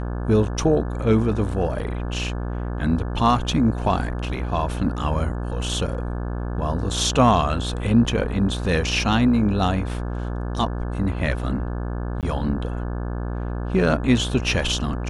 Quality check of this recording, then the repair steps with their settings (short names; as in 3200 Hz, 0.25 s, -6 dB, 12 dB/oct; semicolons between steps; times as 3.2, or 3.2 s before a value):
buzz 60 Hz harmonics 29 -27 dBFS
12.21–12.23 gap 18 ms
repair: de-hum 60 Hz, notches 29; interpolate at 12.21, 18 ms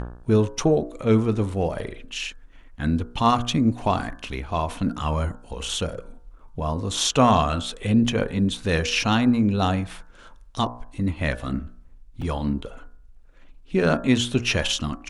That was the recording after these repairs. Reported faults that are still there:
none